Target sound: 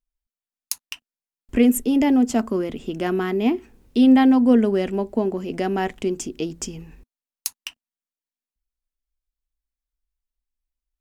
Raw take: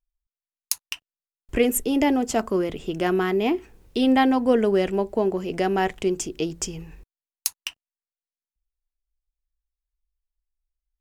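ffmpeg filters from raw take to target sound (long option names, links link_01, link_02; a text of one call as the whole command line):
ffmpeg -i in.wav -af "equalizer=frequency=240:width=3.7:gain=11.5,volume=-2dB" out.wav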